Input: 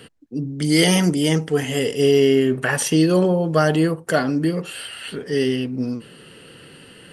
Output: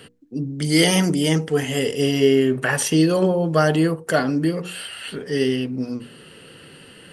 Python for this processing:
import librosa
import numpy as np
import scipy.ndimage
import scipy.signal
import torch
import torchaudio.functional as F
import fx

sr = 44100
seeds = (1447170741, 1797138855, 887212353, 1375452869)

y = fx.hum_notches(x, sr, base_hz=60, count=8)